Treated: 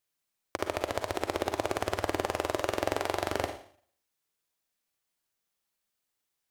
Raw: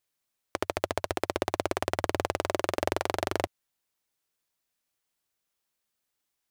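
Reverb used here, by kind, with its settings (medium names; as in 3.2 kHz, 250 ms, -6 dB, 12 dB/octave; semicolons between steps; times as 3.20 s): Schroeder reverb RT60 0.53 s, DRR 5.5 dB; trim -2 dB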